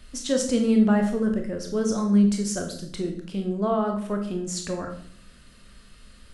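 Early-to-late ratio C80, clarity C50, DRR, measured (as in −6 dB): 11.5 dB, 7.0 dB, 3.0 dB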